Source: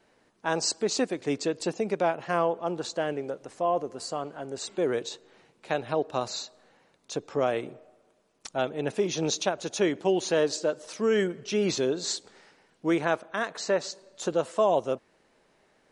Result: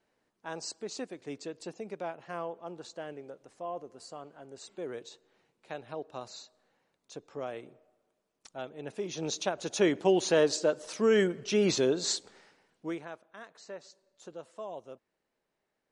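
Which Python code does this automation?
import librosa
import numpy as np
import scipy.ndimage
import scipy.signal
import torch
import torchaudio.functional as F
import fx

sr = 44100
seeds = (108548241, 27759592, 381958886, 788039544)

y = fx.gain(x, sr, db=fx.line((8.77, -12.0), (9.88, 0.0), (12.14, 0.0), (12.86, -9.0), (13.09, -18.0)))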